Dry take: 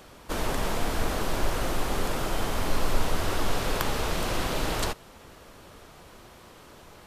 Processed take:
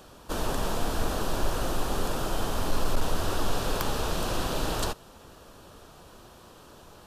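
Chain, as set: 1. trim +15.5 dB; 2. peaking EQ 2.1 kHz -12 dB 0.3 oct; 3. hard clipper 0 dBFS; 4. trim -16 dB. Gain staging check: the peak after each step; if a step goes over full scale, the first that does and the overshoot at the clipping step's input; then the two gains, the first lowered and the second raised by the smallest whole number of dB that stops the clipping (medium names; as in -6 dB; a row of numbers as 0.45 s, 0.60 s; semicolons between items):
+7.0 dBFS, +7.0 dBFS, 0.0 dBFS, -16.0 dBFS; step 1, 7.0 dB; step 1 +8.5 dB, step 4 -9 dB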